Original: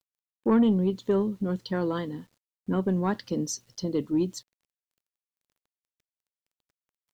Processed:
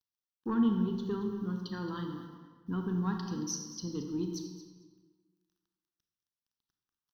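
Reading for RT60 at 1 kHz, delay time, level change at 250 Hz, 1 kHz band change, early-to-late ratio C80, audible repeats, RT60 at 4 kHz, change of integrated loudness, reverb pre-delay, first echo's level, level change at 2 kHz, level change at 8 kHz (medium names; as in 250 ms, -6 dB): 1.5 s, 225 ms, -6.0 dB, -7.0 dB, 5.5 dB, 1, 1.0 s, -7.0 dB, 29 ms, -14.0 dB, -7.0 dB, -2.5 dB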